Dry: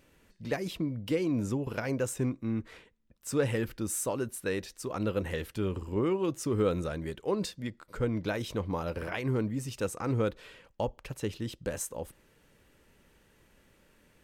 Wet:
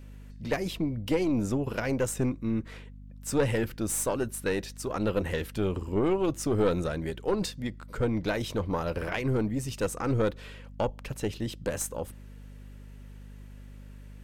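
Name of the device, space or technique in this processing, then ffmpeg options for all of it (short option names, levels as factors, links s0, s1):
valve amplifier with mains hum: -af "aeval=exprs='(tanh(12.6*val(0)+0.5)-tanh(0.5))/12.6':c=same,aeval=exprs='val(0)+0.00316*(sin(2*PI*50*n/s)+sin(2*PI*2*50*n/s)/2+sin(2*PI*3*50*n/s)/3+sin(2*PI*4*50*n/s)/4+sin(2*PI*5*50*n/s)/5)':c=same,volume=1.88"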